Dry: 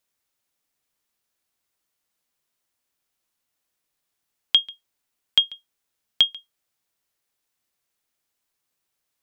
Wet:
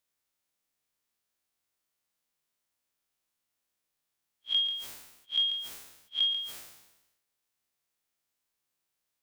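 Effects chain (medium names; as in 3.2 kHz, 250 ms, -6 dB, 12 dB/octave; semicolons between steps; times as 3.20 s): spectral blur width 83 ms; decay stretcher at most 59 dB/s; trim -3 dB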